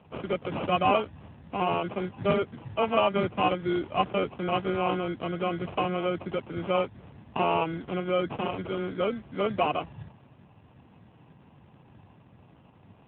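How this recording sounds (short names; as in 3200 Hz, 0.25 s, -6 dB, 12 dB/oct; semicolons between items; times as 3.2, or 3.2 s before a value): aliases and images of a low sample rate 1800 Hz, jitter 0%; AMR-NB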